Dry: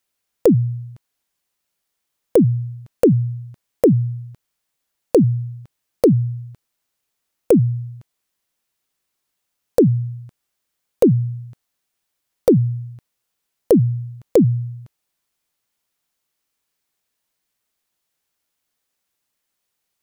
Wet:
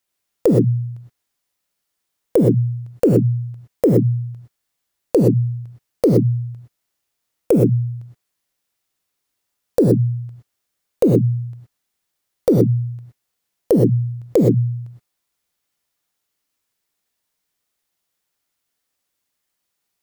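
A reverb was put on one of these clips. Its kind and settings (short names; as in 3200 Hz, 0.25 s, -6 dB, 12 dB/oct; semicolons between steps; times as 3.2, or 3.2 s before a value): non-linear reverb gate 0.14 s rising, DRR 2 dB; gain -2 dB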